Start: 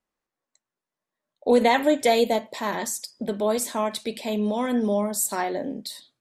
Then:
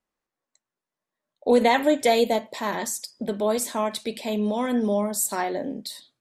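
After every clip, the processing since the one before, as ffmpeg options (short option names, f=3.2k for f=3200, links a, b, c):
-af anull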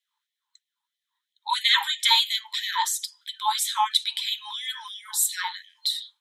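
-af "superequalizer=9b=3.16:13b=3.55,afftfilt=real='re*gte(b*sr/1024,810*pow(1800/810,0.5+0.5*sin(2*PI*3*pts/sr)))':imag='im*gte(b*sr/1024,810*pow(1800/810,0.5+0.5*sin(2*PI*3*pts/sr)))':win_size=1024:overlap=0.75,volume=2.5dB"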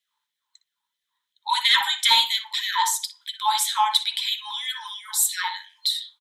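-filter_complex "[0:a]acontrast=66,asplit=2[a][b];[b]adelay=60,lowpass=f=1.1k:p=1,volume=-4dB,asplit=2[c][d];[d]adelay=60,lowpass=f=1.1k:p=1,volume=0.3,asplit=2[e][f];[f]adelay=60,lowpass=f=1.1k:p=1,volume=0.3,asplit=2[g][h];[h]adelay=60,lowpass=f=1.1k:p=1,volume=0.3[i];[a][c][e][g][i]amix=inputs=5:normalize=0,volume=-4dB"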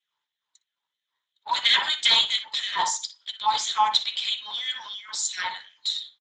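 -af "aresample=16000,aresample=44100" -ar 32000 -c:a libspeex -b:a 15k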